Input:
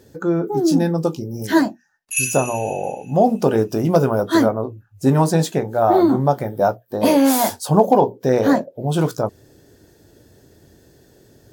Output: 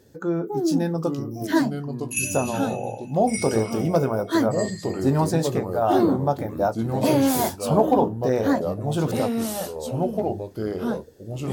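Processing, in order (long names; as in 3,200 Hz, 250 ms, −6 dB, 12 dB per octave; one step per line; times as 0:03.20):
delay with pitch and tempo change per echo 762 ms, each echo −3 semitones, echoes 2, each echo −6 dB
level −5.5 dB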